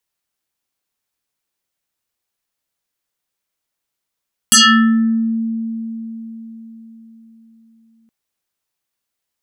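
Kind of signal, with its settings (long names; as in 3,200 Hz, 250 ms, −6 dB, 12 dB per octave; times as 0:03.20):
two-operator FM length 3.57 s, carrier 226 Hz, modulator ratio 6.81, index 7.6, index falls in 0.73 s exponential, decay 4.53 s, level −5 dB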